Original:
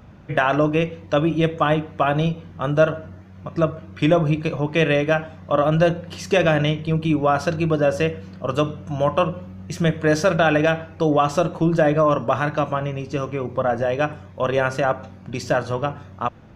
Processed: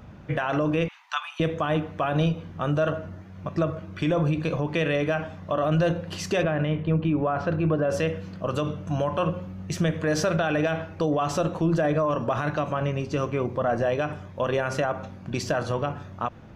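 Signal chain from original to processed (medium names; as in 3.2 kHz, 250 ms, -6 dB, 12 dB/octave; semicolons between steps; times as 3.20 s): 0.88–1.40 s: steep high-pass 820 Hz 72 dB/octave; peak limiter -15.5 dBFS, peak gain reduction 10.5 dB; 6.43–7.90 s: low-pass 2.1 kHz 12 dB/octave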